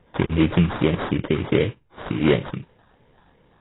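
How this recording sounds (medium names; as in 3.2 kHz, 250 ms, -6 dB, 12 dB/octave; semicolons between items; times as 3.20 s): phasing stages 4, 2.7 Hz, lowest notch 570–2000 Hz; aliases and images of a low sample rate 2.6 kHz, jitter 20%; AAC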